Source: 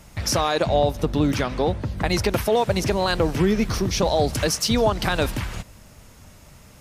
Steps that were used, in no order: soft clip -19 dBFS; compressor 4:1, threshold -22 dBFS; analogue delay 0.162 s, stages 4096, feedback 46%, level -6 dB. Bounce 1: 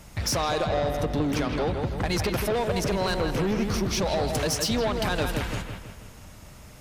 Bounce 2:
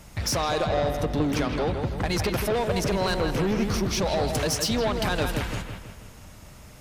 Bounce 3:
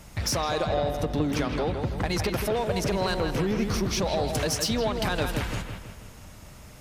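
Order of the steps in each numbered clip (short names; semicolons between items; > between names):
soft clip > analogue delay > compressor; soft clip > compressor > analogue delay; compressor > soft clip > analogue delay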